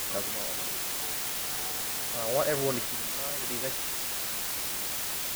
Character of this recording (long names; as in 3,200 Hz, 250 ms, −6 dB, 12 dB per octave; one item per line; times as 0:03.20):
sample-and-hold tremolo, depth 80%
a quantiser's noise floor 6 bits, dither triangular